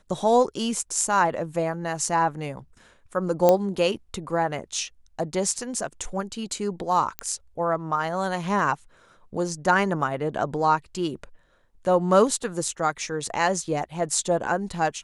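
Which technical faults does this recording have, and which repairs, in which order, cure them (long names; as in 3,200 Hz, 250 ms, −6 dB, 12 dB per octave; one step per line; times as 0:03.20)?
0:03.49: click −6 dBFS
0:07.19: click −12 dBFS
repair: click removal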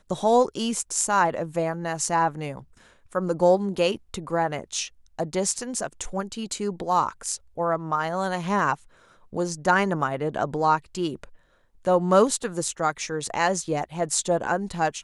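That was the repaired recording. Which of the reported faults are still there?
none of them is left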